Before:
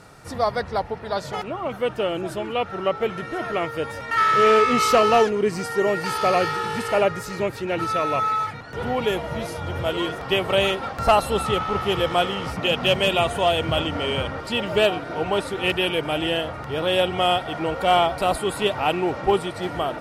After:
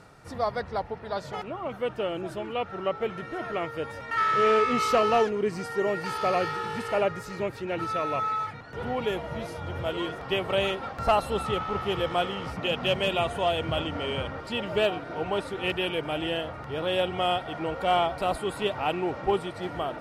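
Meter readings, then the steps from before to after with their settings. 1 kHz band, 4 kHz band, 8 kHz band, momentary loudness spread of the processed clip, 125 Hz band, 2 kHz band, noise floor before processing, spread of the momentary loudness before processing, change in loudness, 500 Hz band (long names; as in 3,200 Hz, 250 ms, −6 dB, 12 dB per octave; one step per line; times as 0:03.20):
−5.5 dB, −7.0 dB, −10.0 dB, 10 LU, −5.5 dB, −6.5 dB, −36 dBFS, 10 LU, −6.0 dB, −5.5 dB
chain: high-shelf EQ 5,300 Hz −6.5 dB
reversed playback
upward compression, threshold −38 dBFS
reversed playback
level −5.5 dB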